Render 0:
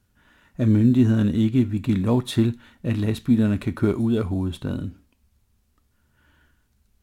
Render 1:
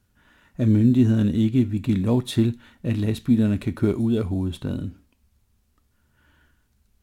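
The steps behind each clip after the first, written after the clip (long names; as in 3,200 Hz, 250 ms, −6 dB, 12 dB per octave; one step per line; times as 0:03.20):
dynamic equaliser 1,200 Hz, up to −5 dB, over −42 dBFS, Q 1.1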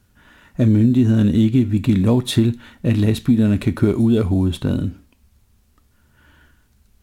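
downward compressor, threshold −19 dBFS, peak gain reduction 7 dB
level +8 dB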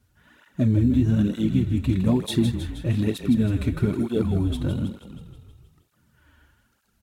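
echo with shifted repeats 159 ms, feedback 60%, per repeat −31 Hz, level −8 dB
through-zero flanger with one copy inverted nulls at 1.1 Hz, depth 6.3 ms
level −4 dB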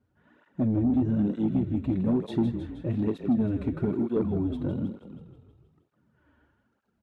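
resonant band-pass 380 Hz, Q 0.63
soft clipping −17 dBFS, distortion −17 dB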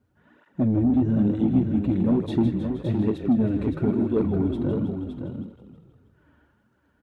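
single-tap delay 566 ms −7 dB
level +3.5 dB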